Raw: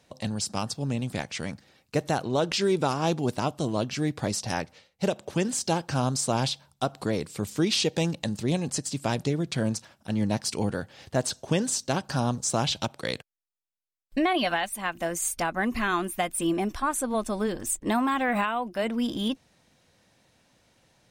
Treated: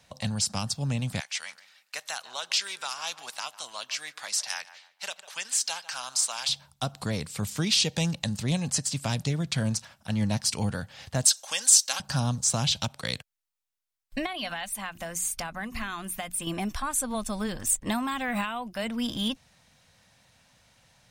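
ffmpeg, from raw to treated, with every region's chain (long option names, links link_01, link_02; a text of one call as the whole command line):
ffmpeg -i in.wav -filter_complex "[0:a]asettb=1/sr,asplit=3[link_01][link_02][link_03];[link_01]atrim=end=1.204[link_04];[link_02]atrim=start=1.2:end=6.49,asetpts=PTS-STARTPTS,afade=type=in:duration=0.004:curve=qsin,afade=type=out:start_time=5.286:duration=0.004:curve=qsin,highpass=1300,asplit=2[link_05][link_06];[link_06]adelay=148,lowpass=frequency=2000:poles=1,volume=-16dB,asplit=2[link_07][link_08];[link_08]adelay=148,lowpass=frequency=2000:poles=1,volume=0.3,asplit=2[link_09][link_10];[link_10]adelay=148,lowpass=frequency=2000:poles=1,volume=0.3[link_11];[link_05][link_07][link_09][link_11]amix=inputs=4:normalize=0,atrim=end_sample=233289[link_12];[link_03]atrim=start=6.486[link_13];[link_04][link_12]acrossfade=duration=0.004:curve1=hsin:curve2=qsin[link_14];[link_14][link_13]acrossfade=duration=0.004:curve1=qsin:curve2=hsin,asettb=1/sr,asplit=3[link_15][link_16][link_17];[link_15]atrim=end=11.254[link_18];[link_16]atrim=start=11.25:end=12,asetpts=PTS-STARTPTS,afade=type=in:duration=0.004:curve=qsin,afade=type=out:start_time=0.746:duration=0.004:curve=qsin,highpass=930,highshelf=frequency=4500:gain=9.5,aecho=1:1:3.7:0.36,atrim=end_sample=33075[link_19];[link_17]atrim=start=11.996[link_20];[link_18][link_19]acrossfade=duration=0.004:curve1=hsin:curve2=qsin[link_21];[link_21][link_20]acrossfade=duration=0.004:curve1=qsin:curve2=hsin,asettb=1/sr,asplit=3[link_22][link_23][link_24];[link_22]atrim=end=14.264[link_25];[link_23]atrim=start=14.26:end=16.47,asetpts=PTS-STARTPTS,afade=type=in:duration=0.004:curve=qsin,afade=type=out:start_time=2.206:duration=0.004:curve=qsin,acompressor=threshold=-33dB:ratio=2:attack=3.2:release=140:knee=1:detection=peak,bandreject=frequency=60:width_type=h:width=6,bandreject=frequency=120:width_type=h:width=6,bandreject=frequency=180:width_type=h:width=6,bandreject=frequency=240:width_type=h:width=6,bandreject=frequency=300:width_type=h:width=6[link_26];[link_24]atrim=start=16.466[link_27];[link_25][link_26]acrossfade=duration=0.004:curve1=hsin:curve2=qsin[link_28];[link_28][link_27]acrossfade=duration=0.004:curve1=qsin:curve2=hsin,equalizer=frequency=350:width_type=o:width=1.1:gain=-13.5,acrossover=split=370|3000[link_29][link_30][link_31];[link_30]acompressor=threshold=-41dB:ratio=2[link_32];[link_29][link_32][link_31]amix=inputs=3:normalize=0,volume=4dB" out.wav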